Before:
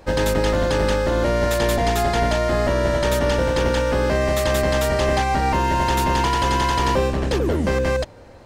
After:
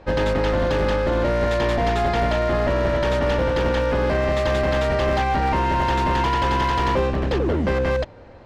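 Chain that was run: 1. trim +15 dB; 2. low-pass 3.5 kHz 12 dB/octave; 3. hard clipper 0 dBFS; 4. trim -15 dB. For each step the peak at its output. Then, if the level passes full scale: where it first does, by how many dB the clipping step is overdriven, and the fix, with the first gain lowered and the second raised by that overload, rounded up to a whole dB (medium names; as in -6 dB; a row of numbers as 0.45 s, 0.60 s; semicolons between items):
+8.0 dBFS, +8.0 dBFS, 0.0 dBFS, -15.0 dBFS; step 1, 8.0 dB; step 1 +7 dB, step 4 -7 dB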